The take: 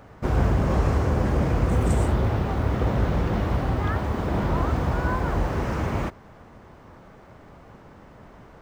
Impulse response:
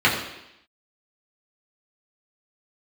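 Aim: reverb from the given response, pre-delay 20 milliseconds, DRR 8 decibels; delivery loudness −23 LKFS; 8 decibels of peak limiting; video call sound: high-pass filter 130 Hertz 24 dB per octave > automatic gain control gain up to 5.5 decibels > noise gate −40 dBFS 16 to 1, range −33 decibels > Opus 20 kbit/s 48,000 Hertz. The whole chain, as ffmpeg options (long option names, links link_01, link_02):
-filter_complex "[0:a]alimiter=limit=-17.5dB:level=0:latency=1,asplit=2[link_01][link_02];[1:a]atrim=start_sample=2205,adelay=20[link_03];[link_02][link_03]afir=irnorm=-1:irlink=0,volume=-28.5dB[link_04];[link_01][link_04]amix=inputs=2:normalize=0,highpass=frequency=130:width=0.5412,highpass=frequency=130:width=1.3066,dynaudnorm=maxgain=5.5dB,agate=range=-33dB:threshold=-40dB:ratio=16,volume=6.5dB" -ar 48000 -c:a libopus -b:a 20k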